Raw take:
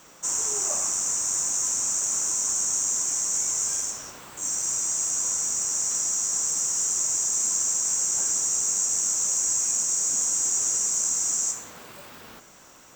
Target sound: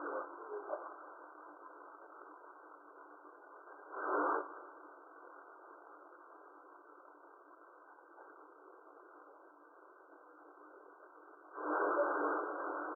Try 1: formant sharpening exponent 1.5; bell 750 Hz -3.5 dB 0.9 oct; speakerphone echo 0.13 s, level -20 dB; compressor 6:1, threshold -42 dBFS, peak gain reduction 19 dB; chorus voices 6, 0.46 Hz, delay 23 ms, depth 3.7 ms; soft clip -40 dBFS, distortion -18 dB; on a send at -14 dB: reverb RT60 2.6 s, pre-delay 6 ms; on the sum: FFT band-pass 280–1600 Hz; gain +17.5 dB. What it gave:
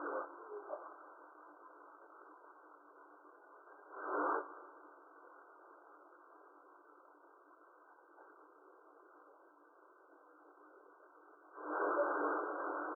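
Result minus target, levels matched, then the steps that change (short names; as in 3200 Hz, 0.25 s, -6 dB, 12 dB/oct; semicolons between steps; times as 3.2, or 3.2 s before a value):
compressor: peak gain reduction +6.5 dB
change: compressor 6:1, threshold -34 dBFS, peak gain reduction 12 dB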